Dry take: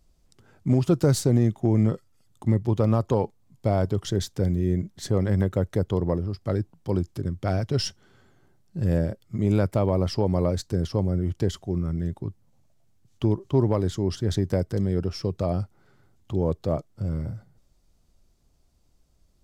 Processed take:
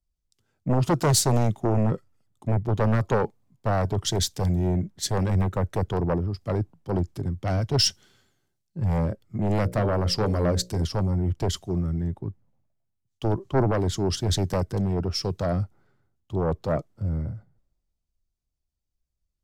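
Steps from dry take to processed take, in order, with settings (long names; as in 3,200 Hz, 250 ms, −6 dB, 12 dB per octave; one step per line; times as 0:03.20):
0:09.63–0:10.82: mains-hum notches 60/120/180/240/300/360/420/480/540/600 Hz
sine wavefolder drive 7 dB, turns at −10 dBFS
multiband upward and downward expander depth 70%
level −7.5 dB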